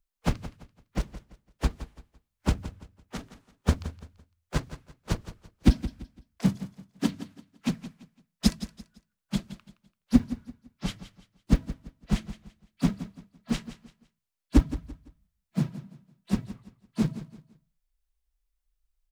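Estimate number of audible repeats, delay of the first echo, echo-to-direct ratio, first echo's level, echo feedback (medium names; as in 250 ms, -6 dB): 3, 169 ms, -13.5 dB, -14.0 dB, 31%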